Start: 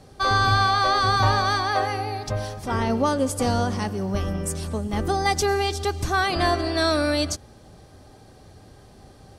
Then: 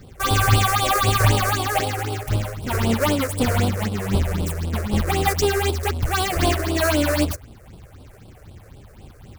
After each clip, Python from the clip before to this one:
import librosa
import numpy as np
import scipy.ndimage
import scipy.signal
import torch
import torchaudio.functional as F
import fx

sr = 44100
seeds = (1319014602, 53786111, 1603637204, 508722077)

y = fx.halfwave_hold(x, sr)
y = fx.phaser_stages(y, sr, stages=6, low_hz=220.0, high_hz=1900.0, hz=3.9, feedback_pct=20)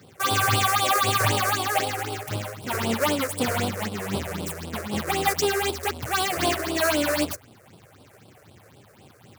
y = scipy.signal.sosfilt(scipy.signal.butter(4, 99.0, 'highpass', fs=sr, output='sos'), x)
y = fx.low_shelf(y, sr, hz=320.0, db=-7.0)
y = F.gain(torch.from_numpy(y), -1.0).numpy()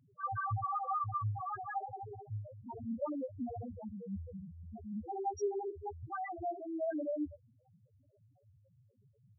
y = fx.spec_topn(x, sr, count=1)
y = F.gain(torch.from_numpy(y), -4.5).numpy()